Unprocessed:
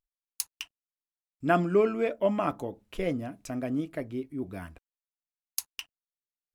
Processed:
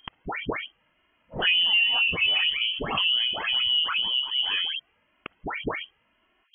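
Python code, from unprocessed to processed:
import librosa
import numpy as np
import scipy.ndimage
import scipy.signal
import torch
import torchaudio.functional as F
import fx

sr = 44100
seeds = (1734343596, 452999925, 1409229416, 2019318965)

y = fx.spec_delay(x, sr, highs='early', ms=326)
y = fx.highpass(y, sr, hz=84.0, slope=6)
y = fx.low_shelf(y, sr, hz=120.0, db=5.5)
y = fx.env_flanger(y, sr, rest_ms=2.8, full_db=-22.5)
y = fx.freq_invert(y, sr, carrier_hz=3200)
y = fx.env_flatten(y, sr, amount_pct=70)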